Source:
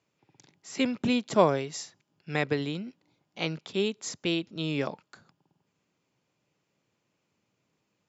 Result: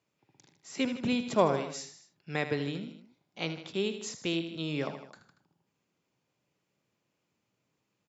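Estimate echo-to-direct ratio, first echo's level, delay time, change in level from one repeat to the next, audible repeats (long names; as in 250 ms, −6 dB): −9.0 dB, −10.5 dB, 78 ms, −4.5 dB, 3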